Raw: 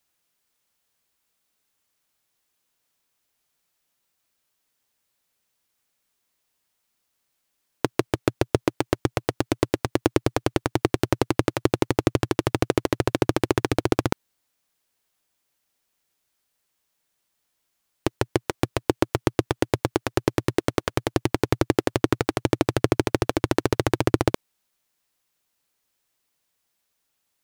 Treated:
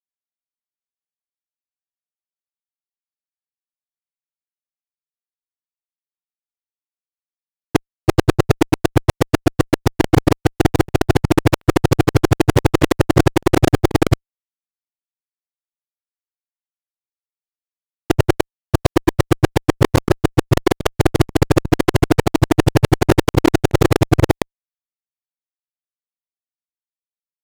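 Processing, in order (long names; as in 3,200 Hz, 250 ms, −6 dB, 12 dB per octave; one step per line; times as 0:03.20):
reversed piece by piece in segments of 121 ms
fuzz pedal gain 28 dB, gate −35 dBFS
level +8 dB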